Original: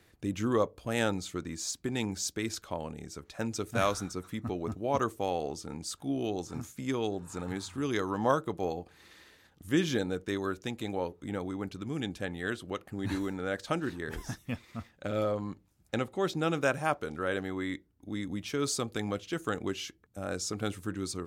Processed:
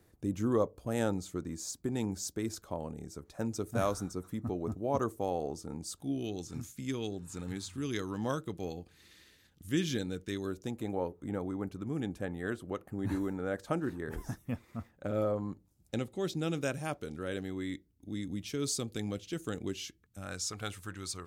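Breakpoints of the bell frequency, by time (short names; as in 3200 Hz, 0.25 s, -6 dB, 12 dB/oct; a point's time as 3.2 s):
bell -11.5 dB 2.2 oct
5.81 s 2700 Hz
6.22 s 850 Hz
10.35 s 850 Hz
10.82 s 3700 Hz
15.36 s 3700 Hz
16.05 s 1100 Hz
19.78 s 1100 Hz
20.54 s 280 Hz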